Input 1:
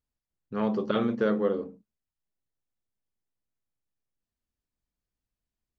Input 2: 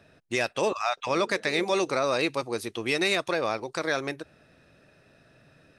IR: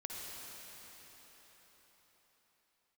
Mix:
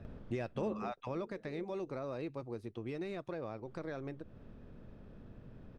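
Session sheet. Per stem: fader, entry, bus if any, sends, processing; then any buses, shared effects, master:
-5.5 dB, 0.05 s, muted 0.92–3.65, no send, per-bin compression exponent 0.6; upward compressor, threshold -37 dBFS; auto duck -8 dB, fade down 0.65 s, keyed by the second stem
0.8 s -2 dB -> 1.35 s -9.5 dB, 0.00 s, no send, de-esser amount 70%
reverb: off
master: tilt -4.5 dB/oct; compressor 2:1, threshold -45 dBFS, peak gain reduction 14.5 dB

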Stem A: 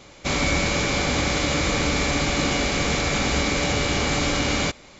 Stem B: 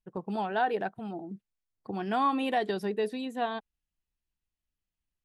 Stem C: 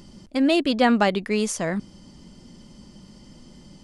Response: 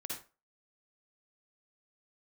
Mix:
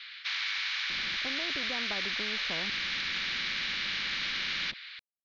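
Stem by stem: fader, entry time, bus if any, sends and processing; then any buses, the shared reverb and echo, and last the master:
-4.0 dB, 0.00 s, no send, elliptic high-pass 1700 Hz, stop band 70 dB
off
-14.5 dB, 0.90 s, no send, compressor, threshold -23 dBFS, peak gain reduction 9.5 dB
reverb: off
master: elliptic low-pass 4000 Hz, stop band 50 dB; spectral compressor 2:1

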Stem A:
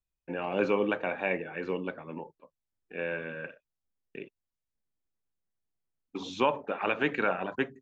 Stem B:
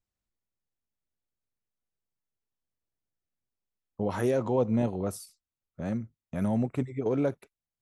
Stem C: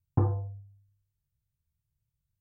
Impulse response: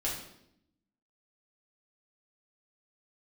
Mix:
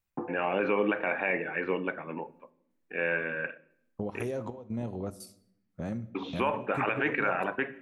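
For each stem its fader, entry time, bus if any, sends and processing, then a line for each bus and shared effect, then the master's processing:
+2.5 dB, 0.00 s, send -20 dB, synth low-pass 2100 Hz, resonance Q 1.8; low shelf 200 Hz -4.5 dB
0.0 dB, 0.00 s, send -17 dB, compressor 6:1, threshold -32 dBFS, peak gain reduction 11 dB; step gate "x.xxx..xxx" 150 bpm -12 dB
+2.5 dB, 0.00 s, no send, steep high-pass 190 Hz; auto duck -11 dB, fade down 0.35 s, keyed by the first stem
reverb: on, RT60 0.75 s, pre-delay 3 ms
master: limiter -17 dBFS, peak gain reduction 8.5 dB

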